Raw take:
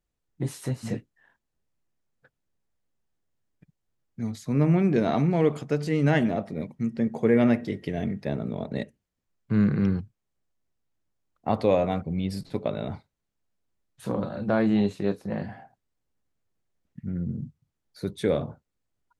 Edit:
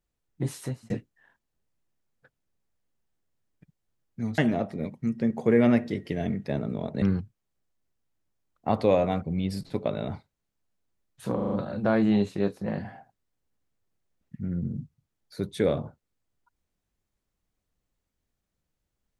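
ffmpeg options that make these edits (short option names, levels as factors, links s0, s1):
-filter_complex "[0:a]asplit=8[s0][s1][s2][s3][s4][s5][s6][s7];[s0]atrim=end=0.9,asetpts=PTS-STARTPTS,afade=t=out:st=0.6:d=0.3[s8];[s1]atrim=start=0.9:end=4.382,asetpts=PTS-STARTPTS,afade=t=in:d=0.004:c=hsin[s9];[s2]atrim=start=6.148:end=8.792[s10];[s3]atrim=start=9.818:end=14.192[s11];[s4]atrim=start=14.148:end=14.192[s12];[s5]atrim=start=14.148:end=14.192[s13];[s6]atrim=start=14.148:end=14.192[s14];[s7]atrim=start=14.148[s15];[s8][s9]concat=n=2:v=0:a=1[s16];[s16][s10]acrossfade=d=0.004:c1=hsin:c2=hsin[s17];[s17][s11]acrossfade=d=0.004:c1=hsin:c2=hsin[s18];[s18][s12]acrossfade=d=0.004:c1=hsin:c2=hsin[s19];[s19][s13]acrossfade=d=0.004:c1=hsin:c2=hsin[s20];[s20][s14]acrossfade=d=0.004:c1=hsin:c2=hsin[s21];[s21][s15]acrossfade=d=0.004:c1=hsin:c2=hsin"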